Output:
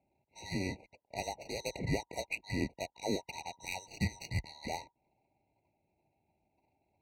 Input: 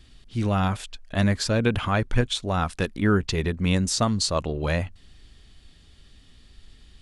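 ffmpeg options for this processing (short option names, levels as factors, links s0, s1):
-af "afftfilt=real='real(if(lt(b,960),b+48*(1-2*mod(floor(b/48),2)),b),0)':imag='imag(if(lt(b,960),b+48*(1-2*mod(floor(b/48),2)),b),0)':win_size=2048:overlap=0.75,highpass=f=42:w=0.5412,highpass=f=42:w=1.3066,equalizer=f=100:w=0.74:g=5,adynamicsmooth=sensitivity=2:basefreq=570,afftfilt=real='re*eq(mod(floor(b*sr/1024/950),2),0)':imag='im*eq(mod(floor(b*sr/1024/950),2),0)':win_size=1024:overlap=0.75,volume=0.531"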